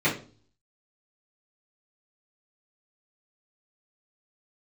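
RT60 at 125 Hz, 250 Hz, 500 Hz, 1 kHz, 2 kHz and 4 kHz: 0.70 s, 0.55 s, 0.45 s, 0.35 s, 0.30 s, 0.35 s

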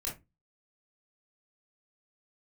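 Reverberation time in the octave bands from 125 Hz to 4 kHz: 0.40 s, 0.30 s, 0.25 s, 0.20 s, 0.20 s, 0.15 s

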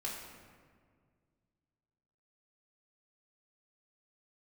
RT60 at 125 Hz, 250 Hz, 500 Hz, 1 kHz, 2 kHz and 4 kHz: 2.7 s, 2.4 s, 2.0 s, 1.7 s, 1.5 s, 1.0 s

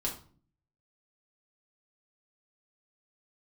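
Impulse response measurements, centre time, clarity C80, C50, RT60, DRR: 20 ms, 14.0 dB, 9.0 dB, 0.45 s, -3.5 dB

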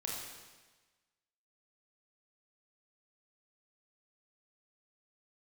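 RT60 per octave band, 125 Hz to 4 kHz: 1.3 s, 1.2 s, 1.3 s, 1.3 s, 1.3 s, 1.3 s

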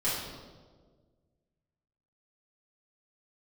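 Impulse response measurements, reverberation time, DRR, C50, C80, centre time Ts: 1.6 s, -11.0 dB, 0.5 dB, 3.5 dB, 77 ms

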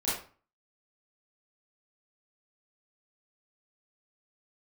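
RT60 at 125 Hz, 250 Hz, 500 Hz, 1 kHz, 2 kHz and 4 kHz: 0.55 s, 0.45 s, 0.40 s, 0.40 s, 0.35 s, 0.30 s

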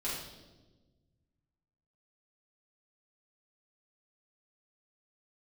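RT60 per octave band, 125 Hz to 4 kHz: 2.4 s, 1.9 s, 1.5 s, 1.0 s, 0.85 s, 1.0 s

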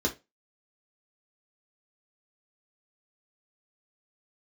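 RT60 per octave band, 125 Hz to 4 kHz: 0.25 s, 0.25 s, 0.25 s, 0.20 s, 0.20 s, 0.20 s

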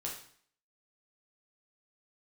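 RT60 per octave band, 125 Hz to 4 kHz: 0.60 s, 0.55 s, 0.55 s, 0.55 s, 0.55 s, 0.55 s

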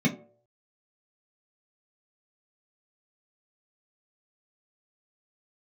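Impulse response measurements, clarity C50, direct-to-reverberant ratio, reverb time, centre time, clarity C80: 13.0 dB, -4.0 dB, 0.55 s, 15 ms, 16.0 dB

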